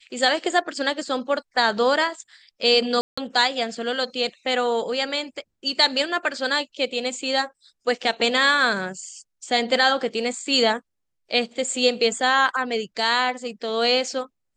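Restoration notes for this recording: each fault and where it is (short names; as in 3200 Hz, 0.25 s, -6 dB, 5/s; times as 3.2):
3.01–3.17 gap 0.165 s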